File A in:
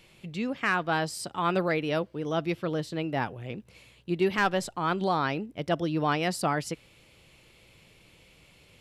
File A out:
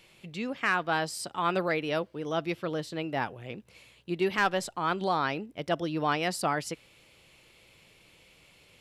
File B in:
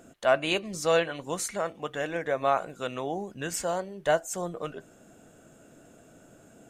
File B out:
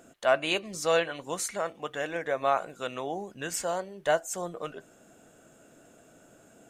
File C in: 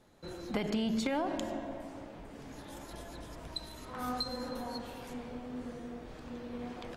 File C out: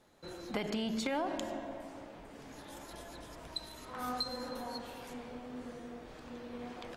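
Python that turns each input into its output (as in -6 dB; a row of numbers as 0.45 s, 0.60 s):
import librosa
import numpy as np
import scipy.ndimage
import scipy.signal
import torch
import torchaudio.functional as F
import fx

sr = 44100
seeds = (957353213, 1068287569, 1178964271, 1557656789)

y = fx.low_shelf(x, sr, hz=280.0, db=-6.5)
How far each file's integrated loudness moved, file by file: -1.0 LU, -1.0 LU, -2.0 LU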